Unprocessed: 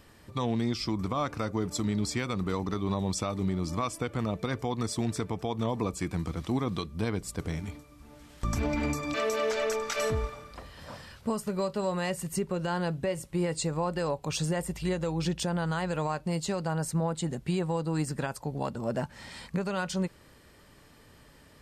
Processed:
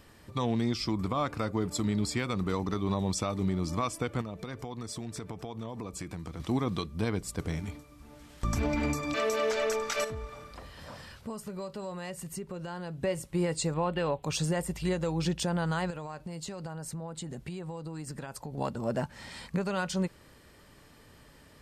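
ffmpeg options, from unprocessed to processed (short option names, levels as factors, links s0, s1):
-filter_complex "[0:a]asettb=1/sr,asplit=3[s0][s1][s2];[s0]atrim=end=0.914[s3];[s1]atrim=start=0.91:end=2.27,asetpts=PTS-STARTPTS,afade=t=in:d=0.004:c=qsin,afade=t=out:st=1.356:d=0.004:c=qsin,bandreject=f=5900:w=8.8[s4];[s2]atrim=start=2.266[s5];[s3][s4]acrossfade=d=0.004:c1=hsin:c2=qsin[s6];[s6][s5]acrossfade=d=0.004:c1=qsin:c2=hsin,asettb=1/sr,asplit=3[s7][s8][s9];[s7]atrim=end=4.214[s10];[s8]atrim=start=4.21:end=6.4,asetpts=PTS-STARTPTS,afade=t=in:d=0.004:c=qsin,afade=t=out:st=2.186:d=0.004:c=qsin,acompressor=threshold=0.0178:ratio=6:attack=3.2:release=140:knee=1:detection=peak[s11];[s9]atrim=start=6.396[s12];[s10][s11]acrossfade=d=0.004:c1=hsin:c2=qsin[s13];[s13][s12]acrossfade=d=0.004:c1=qsin:c2=hsin,asettb=1/sr,asplit=3[s14][s15][s16];[s14]atrim=end=10.044[s17];[s15]atrim=start=10.04:end=13.02,asetpts=PTS-STARTPTS,afade=t=in:d=0.004:c=qsin,afade=t=out:st=2.976:d=0.004:c=qsin,acompressor=threshold=0.00891:ratio=2:attack=3.2:release=140:knee=1:detection=peak[s18];[s16]atrim=start=13.016[s19];[s17][s18]acrossfade=d=0.004:c1=hsin:c2=qsin[s20];[s20][s19]acrossfade=d=0.004:c1=qsin:c2=hsin,asettb=1/sr,asplit=3[s21][s22][s23];[s21]atrim=end=13.744[s24];[s22]atrim=start=13.74:end=14.23,asetpts=PTS-STARTPTS,afade=t=in:d=0.004:c=qsin,afade=t=out:st=0.486:d=0.004:c=qsin,highshelf=f=4200:t=q:w=3:g=-8[s25];[s23]atrim=start=14.226[s26];[s24][s25]acrossfade=d=0.004:c1=hsin:c2=qsin[s27];[s27][s26]acrossfade=d=0.004:c1=qsin:c2=hsin,asettb=1/sr,asplit=3[s28][s29][s30];[s28]atrim=end=15.904[s31];[s29]atrim=start=15.9:end=18.58,asetpts=PTS-STARTPTS,afade=t=in:d=0.004:c=qsin,afade=t=out:st=2.676:d=0.004:c=qsin,acompressor=threshold=0.0178:ratio=10:attack=3.2:release=140:knee=1:detection=peak[s32];[s30]atrim=start=18.576[s33];[s31][s32]acrossfade=d=0.004:c1=hsin:c2=qsin[s34];[s34][s33]acrossfade=d=0.004:c1=qsin:c2=hsin"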